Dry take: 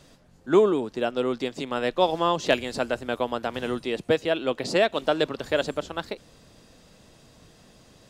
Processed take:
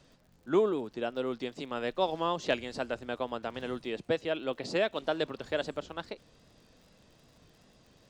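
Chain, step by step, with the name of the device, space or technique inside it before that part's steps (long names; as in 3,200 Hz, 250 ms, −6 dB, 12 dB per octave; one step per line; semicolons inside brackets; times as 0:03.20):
lo-fi chain (low-pass filter 6,900 Hz 12 dB per octave; tape wow and flutter; surface crackle 63 per second −44 dBFS)
level −7.5 dB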